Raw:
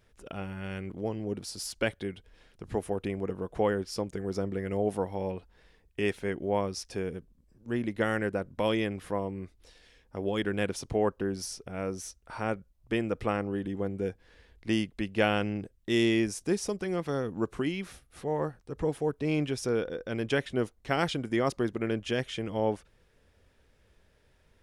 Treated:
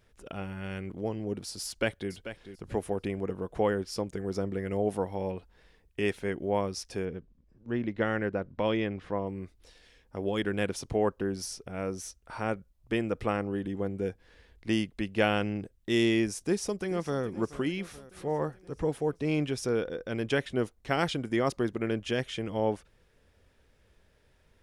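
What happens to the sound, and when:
1.66–2.11 s: echo throw 440 ms, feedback 20%, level -11.5 dB
7.05–9.27 s: distance through air 140 m
16.37–17.23 s: echo throw 430 ms, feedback 65%, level -16 dB

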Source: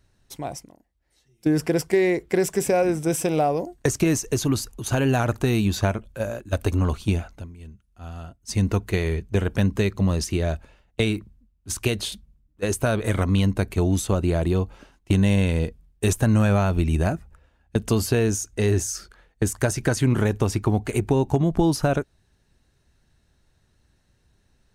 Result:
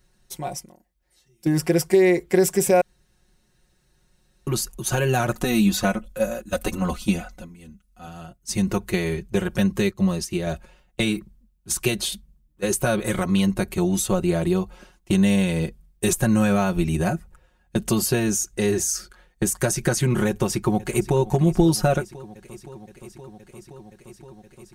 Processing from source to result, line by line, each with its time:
2.81–4.47 s: room tone
5.35–8.07 s: comb 4 ms
9.91–10.47 s: upward expansion, over -40 dBFS
20.27–21.18 s: echo throw 520 ms, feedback 85%, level -17.5 dB
whole clip: treble shelf 7 kHz +7.5 dB; comb 5.5 ms, depth 84%; trim -1.5 dB

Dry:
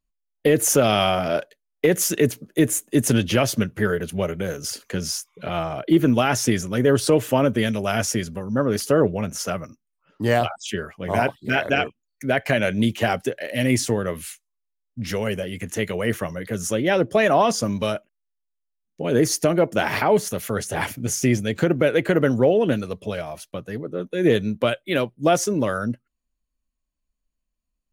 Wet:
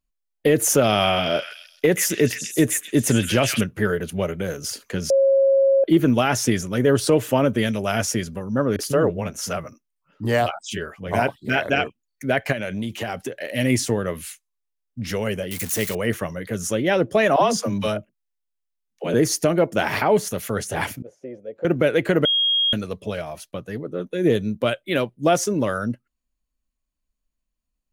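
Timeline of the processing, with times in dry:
0.90–3.61 s: repeats whose band climbs or falls 132 ms, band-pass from 2.2 kHz, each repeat 0.7 oct, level -1 dB
5.10–5.84 s: bleep 544 Hz -13 dBFS
8.76–11.13 s: bands offset in time lows, highs 30 ms, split 260 Hz
12.52–13.40 s: compression 4:1, threshold -24 dBFS
15.51–15.95 s: zero-crossing glitches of -20 dBFS
17.36–19.14 s: phase dispersion lows, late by 60 ms, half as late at 320 Hz
21.02–21.65 s: band-pass filter 530 Hz, Q 6.2
22.25–22.73 s: bleep 3.26 kHz -16.5 dBFS
24.17–24.66 s: peaking EQ 1.9 kHz -5 dB 2.6 oct

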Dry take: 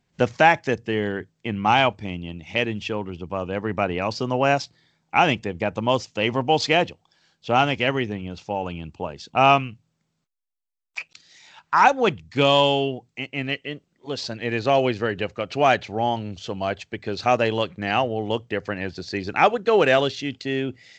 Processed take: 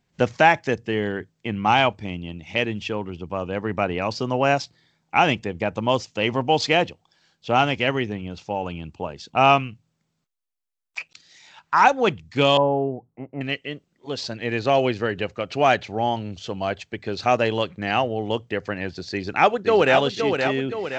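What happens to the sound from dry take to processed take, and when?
12.57–13.41 s: low-pass 1.1 kHz 24 dB/octave
19.12–19.95 s: echo throw 520 ms, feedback 50%, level -5.5 dB

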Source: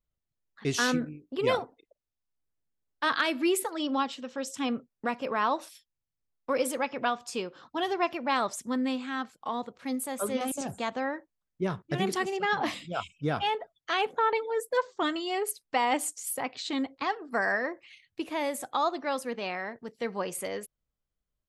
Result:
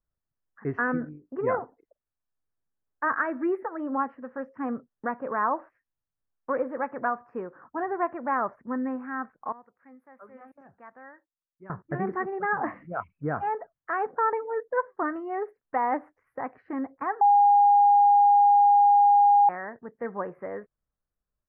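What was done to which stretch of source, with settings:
9.52–11.70 s: pre-emphasis filter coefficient 0.9
17.21–19.49 s: bleep 815 Hz -15.5 dBFS
whole clip: elliptic low-pass 1.8 kHz, stop band 50 dB; peaking EQ 1.2 kHz +3 dB

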